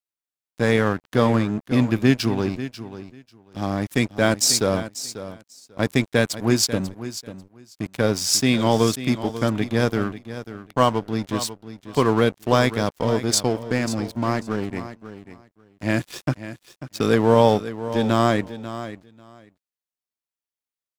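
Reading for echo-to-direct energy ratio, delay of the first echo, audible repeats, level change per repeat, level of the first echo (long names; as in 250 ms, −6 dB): −13.0 dB, 542 ms, 2, −16.0 dB, −13.0 dB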